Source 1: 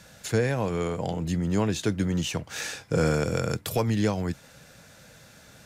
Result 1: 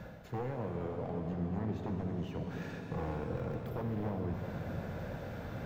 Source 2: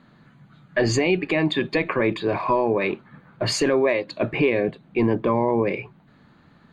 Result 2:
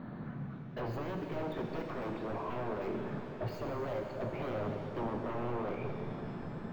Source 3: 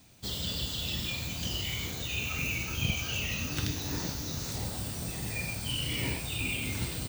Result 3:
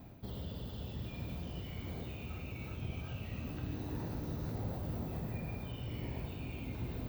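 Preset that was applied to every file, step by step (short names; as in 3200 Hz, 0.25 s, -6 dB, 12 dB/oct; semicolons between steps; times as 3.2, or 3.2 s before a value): wavefolder -21 dBFS; reverse; compressor 6:1, threshold -43 dBFS; reverse; limiter -37.5 dBFS; high shelf 8500 Hz -11.5 dB; vocal rider within 3 dB 0.5 s; EQ curve 730 Hz 0 dB, 10000 Hz -26 dB, 16000 Hz +3 dB; on a send: dark delay 0.179 s, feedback 85%, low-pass 520 Hz, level -13 dB; on the sum: shimmer reverb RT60 3 s, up +7 st, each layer -8 dB, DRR 3.5 dB; gain +7 dB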